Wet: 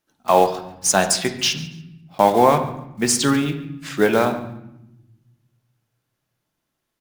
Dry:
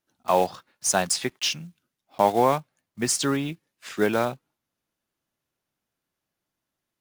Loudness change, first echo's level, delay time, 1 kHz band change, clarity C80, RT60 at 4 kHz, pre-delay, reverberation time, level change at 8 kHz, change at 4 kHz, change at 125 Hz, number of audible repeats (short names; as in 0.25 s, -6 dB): +5.5 dB, -18.0 dB, 0.141 s, +6.0 dB, 12.0 dB, 0.65 s, 4 ms, 0.85 s, +5.0 dB, +5.5 dB, +7.0 dB, 2